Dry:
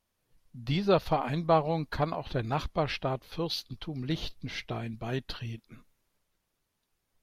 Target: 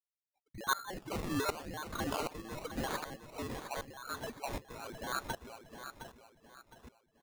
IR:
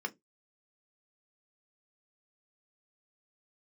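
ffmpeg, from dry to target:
-filter_complex "[0:a]afftfilt=real='real(if(lt(b,736),b+184*(1-2*mod(floor(b/184),2)),b),0)':imag='imag(if(lt(b,736),b+184*(1-2*mod(floor(b/184),2)),b),0)':win_size=2048:overlap=0.75,highpass=210,agate=range=-42dB:threshold=-57dB:ratio=16:detection=peak,acrossover=split=330|1700[a][b][c];[b]acompressor=threshold=-60dB:ratio=20[d];[c]alimiter=limit=-21.5dB:level=0:latency=1:release=17[e];[a][d][e]amix=inputs=3:normalize=0,acrusher=samples=23:mix=1:aa=0.000001:lfo=1:lforange=13.8:lforate=0.91,aecho=1:1:712|1424|2136|2848:0.376|0.147|0.0572|0.0223,aeval=exprs='val(0)*pow(10,-18*if(lt(mod(-1.3*n/s,1),2*abs(-1.3)/1000),1-mod(-1.3*n/s,1)/(2*abs(-1.3)/1000),(mod(-1.3*n/s,1)-2*abs(-1.3)/1000)/(1-2*abs(-1.3)/1000))/20)':c=same,volume=1dB"

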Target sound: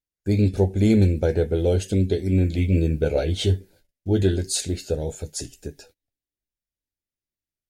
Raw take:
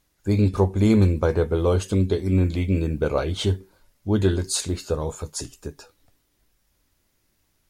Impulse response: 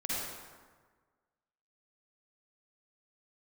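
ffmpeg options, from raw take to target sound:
-filter_complex "[0:a]asuperstop=centerf=1100:order=4:qfactor=1.4,agate=range=-26dB:threshold=-52dB:ratio=16:detection=peak,asettb=1/sr,asplit=3[a][b][c];[a]atrim=end=2.574[d];[b]atrim=start=2.57:end=4.23,asetpts=PTS-STARTPTS,afade=t=in:d=0.004:c=qsin,afade=t=out:st=1.656:d=0.004:c=qsin,asplit=2[e][f];[f]adelay=12,volume=-6dB[g];[e][g]amix=inputs=2:normalize=0,atrim=end_sample=73206[h];[c]atrim=start=4.226[i];[d][h]acrossfade=d=0.004:c1=hsin:c2=qsin[j];[j][i]acrossfade=d=0.004:c1=qsin:c2=hsin"

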